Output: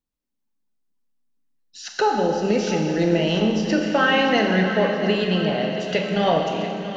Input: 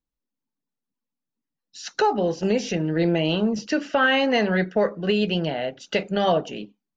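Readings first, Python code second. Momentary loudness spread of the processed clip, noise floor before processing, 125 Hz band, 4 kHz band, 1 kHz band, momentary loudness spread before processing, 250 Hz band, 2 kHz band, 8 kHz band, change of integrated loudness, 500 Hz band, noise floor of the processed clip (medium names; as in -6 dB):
6 LU, under -85 dBFS, +2.5 dB, +2.5 dB, +3.0 dB, 8 LU, +2.5 dB, +2.0 dB, no reading, +2.0 dB, +2.0 dB, -77 dBFS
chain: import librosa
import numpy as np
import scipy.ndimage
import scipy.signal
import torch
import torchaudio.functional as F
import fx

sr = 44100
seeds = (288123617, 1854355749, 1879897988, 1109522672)

p1 = x + fx.echo_feedback(x, sr, ms=683, feedback_pct=51, wet_db=-12, dry=0)
y = fx.rev_schroeder(p1, sr, rt60_s=2.4, comb_ms=29, drr_db=2.0)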